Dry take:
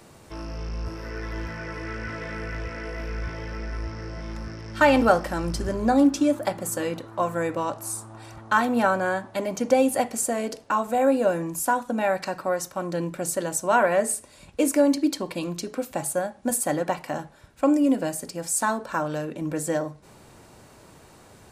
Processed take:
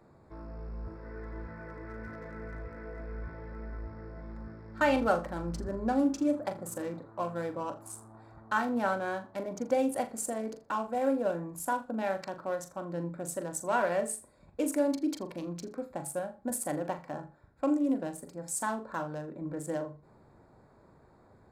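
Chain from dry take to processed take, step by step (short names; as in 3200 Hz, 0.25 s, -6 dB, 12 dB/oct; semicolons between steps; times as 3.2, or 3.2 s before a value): Wiener smoothing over 15 samples; flutter echo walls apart 7 m, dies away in 0.25 s; gain -8.5 dB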